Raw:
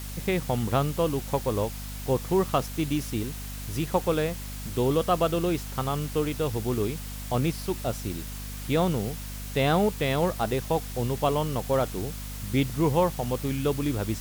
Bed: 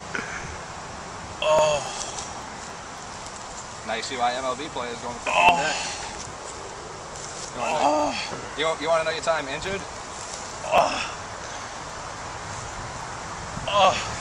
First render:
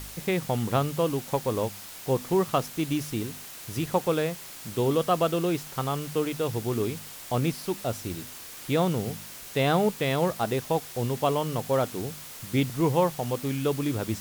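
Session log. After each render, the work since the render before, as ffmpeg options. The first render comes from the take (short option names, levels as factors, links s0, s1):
-af "bandreject=f=50:t=h:w=4,bandreject=f=100:t=h:w=4,bandreject=f=150:t=h:w=4,bandreject=f=200:t=h:w=4,bandreject=f=250:t=h:w=4"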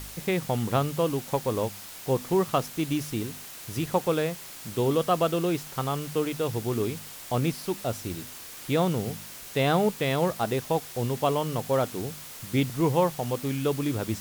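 -af anull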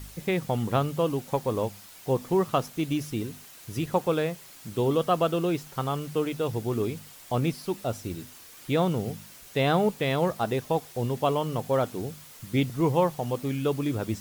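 -af "afftdn=nr=7:nf=-43"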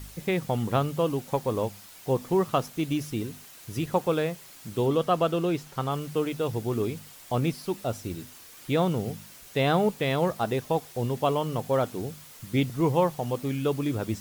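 -filter_complex "[0:a]asettb=1/sr,asplit=3[s0][s1][s2];[s0]atrim=end=4.864[s3];[s1]atrim=start=4.86:end=5.92,asetpts=PTS-STARTPTS,afade=t=in:d=0.004:c=qsin,afade=t=out:st=1.056:d=0.004:c=qsin,highshelf=f=8900:g=-5[s4];[s2]atrim=start=5.916[s5];[s3][s4]acrossfade=d=0.004:c1=hsin:c2=qsin[s6];[s6][s5]acrossfade=d=0.004:c1=qsin:c2=hsin"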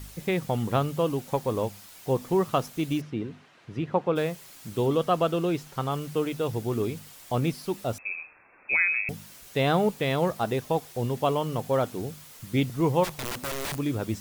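-filter_complex "[0:a]asplit=3[s0][s1][s2];[s0]afade=t=out:st=3:d=0.02[s3];[s1]highpass=110,lowpass=2400,afade=t=in:st=3:d=0.02,afade=t=out:st=4.15:d=0.02[s4];[s2]afade=t=in:st=4.15:d=0.02[s5];[s3][s4][s5]amix=inputs=3:normalize=0,asettb=1/sr,asplit=3[s6][s7][s8];[s6]atrim=end=7.984[s9];[s7]atrim=start=7.98:end=9.09,asetpts=PTS-STARTPTS,afade=t=in:d=0.004:c=qsin,afade=t=out:st=1.106:d=0.004:c=qsin,lowpass=f=2300:t=q:w=0.5098,lowpass=f=2300:t=q:w=0.6013,lowpass=f=2300:t=q:w=0.9,lowpass=f=2300:t=q:w=2.563,afreqshift=-2700[s10];[s8]atrim=start=9.086[s11];[s9][s10]acrossfade=d=0.004:c1=hsin:c2=qsin[s12];[s12][s11]acrossfade=d=0.004:c1=qsin:c2=hsin,asplit=3[s13][s14][s15];[s13]afade=t=out:st=13.03:d=0.02[s16];[s14]aeval=exprs='(mod(22.4*val(0)+1,2)-1)/22.4':c=same,afade=t=in:st=13.03:d=0.02,afade=t=out:st=13.77:d=0.02[s17];[s15]afade=t=in:st=13.77:d=0.02[s18];[s16][s17][s18]amix=inputs=3:normalize=0"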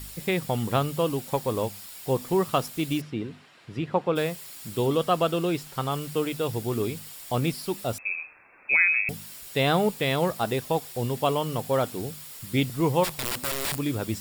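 -af "highshelf=f=2600:g=7,bandreject=f=6200:w=7.5"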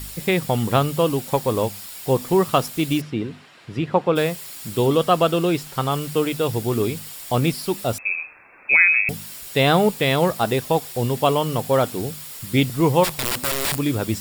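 -af "volume=2"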